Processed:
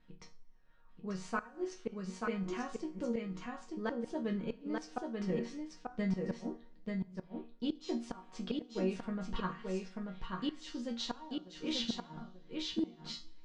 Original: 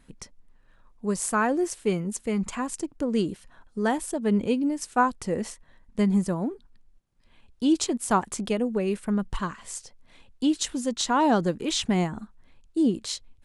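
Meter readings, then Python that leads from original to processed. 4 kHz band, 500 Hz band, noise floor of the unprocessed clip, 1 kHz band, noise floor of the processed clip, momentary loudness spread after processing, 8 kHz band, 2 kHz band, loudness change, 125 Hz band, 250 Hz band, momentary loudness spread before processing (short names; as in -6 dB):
-8.5 dB, -11.5 dB, -59 dBFS, -16.5 dB, -58 dBFS, 9 LU, -21.0 dB, -12.5 dB, -13.0 dB, -11.0 dB, -12.0 dB, 11 LU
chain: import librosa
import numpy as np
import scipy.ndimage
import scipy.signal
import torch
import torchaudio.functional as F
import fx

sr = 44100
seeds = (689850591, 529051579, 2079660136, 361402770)

p1 = scipy.signal.sosfilt(scipy.signal.butter(4, 4900.0, 'lowpass', fs=sr, output='sos'), x)
p2 = fx.resonator_bank(p1, sr, root=51, chord='minor', decay_s=0.29)
p3 = fx.gate_flip(p2, sr, shuts_db=-31.0, range_db=-25)
p4 = p3 + fx.echo_single(p3, sr, ms=887, db=-3.5, dry=0)
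p5 = fx.rev_double_slope(p4, sr, seeds[0], early_s=0.48, late_s=2.3, knee_db=-16, drr_db=15.5)
y = p5 * librosa.db_to_amplitude(7.0)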